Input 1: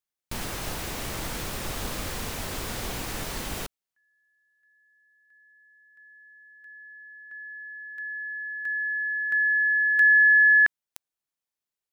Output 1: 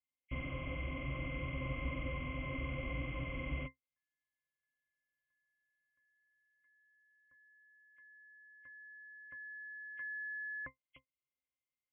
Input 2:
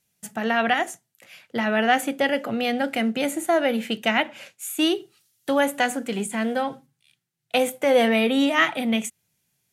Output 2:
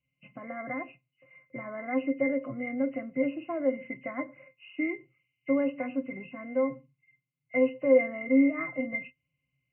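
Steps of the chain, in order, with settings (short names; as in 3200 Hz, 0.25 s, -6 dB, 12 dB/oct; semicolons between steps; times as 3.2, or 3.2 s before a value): nonlinear frequency compression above 1800 Hz 4:1; octave resonator C, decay 0.12 s; gain +2.5 dB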